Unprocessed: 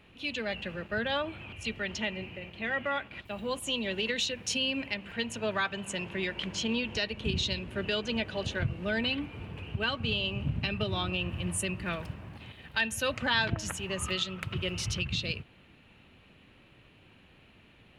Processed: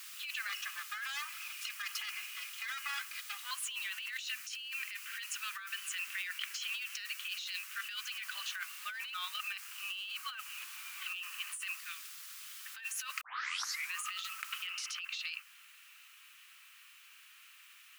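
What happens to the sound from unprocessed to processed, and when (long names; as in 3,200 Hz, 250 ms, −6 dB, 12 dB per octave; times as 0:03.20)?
0:00.49–0:03.51: lower of the sound and its delayed copy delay 2.4 ms
0:04.09–0:08.23: high-pass filter 1,200 Hz 24 dB per octave
0:09.14–0:11.07: reverse
0:11.79–0:12.66: first difference
0:13.21: tape start 0.76 s
0:14.67: noise floor change −51 dB −64 dB
whole clip: elliptic high-pass filter 1,200 Hz, stop band 70 dB; dynamic equaliser 3,600 Hz, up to −6 dB, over −50 dBFS, Q 3.3; compressor whose output falls as the input rises −40 dBFS, ratio −1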